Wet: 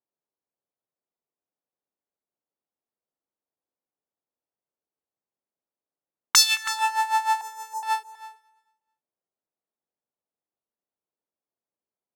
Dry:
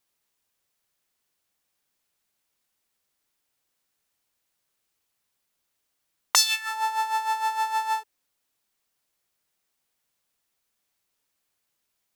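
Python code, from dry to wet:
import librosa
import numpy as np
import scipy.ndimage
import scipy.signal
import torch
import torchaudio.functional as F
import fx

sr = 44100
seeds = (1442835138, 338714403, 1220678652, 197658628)

p1 = fx.highpass(x, sr, hz=420.0, slope=6)
p2 = fx.env_lowpass(p1, sr, base_hz=600.0, full_db=-28.0)
p3 = fx.cheby1_bandstop(p2, sr, low_hz=760.0, high_hz=6000.0, order=3, at=(7.41, 7.83))
p4 = fx.echo_feedback(p3, sr, ms=220, feedback_pct=39, wet_db=-23.5)
p5 = fx.fold_sine(p4, sr, drive_db=7, ceiling_db=-4.0)
p6 = p4 + (p5 * librosa.db_to_amplitude(-11.0))
p7 = p6 + 10.0 ** (-12.5 / 20.0) * np.pad(p6, (int(324 * sr / 1000.0), 0))[:len(p6)]
y = fx.upward_expand(p7, sr, threshold_db=-29.0, expansion=1.5)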